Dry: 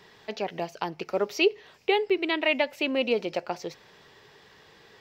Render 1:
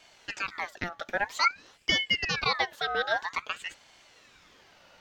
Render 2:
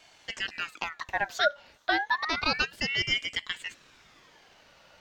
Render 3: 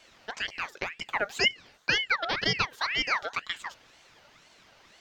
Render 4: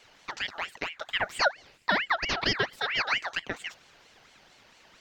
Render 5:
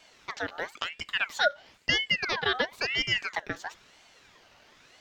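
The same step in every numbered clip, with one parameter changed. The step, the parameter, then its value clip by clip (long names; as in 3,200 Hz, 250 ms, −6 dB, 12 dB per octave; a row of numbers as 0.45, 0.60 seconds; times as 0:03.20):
ring modulator whose carrier an LFO sweeps, at: 0.51, 0.31, 2, 4.4, 0.99 Hertz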